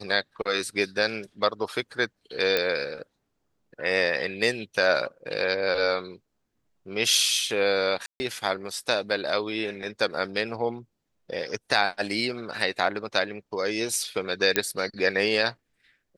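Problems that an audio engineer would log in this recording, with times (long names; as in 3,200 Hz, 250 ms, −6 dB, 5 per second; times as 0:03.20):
0:02.57: click −9 dBFS
0:08.06–0:08.20: drop-out 140 ms
0:14.56: click −5 dBFS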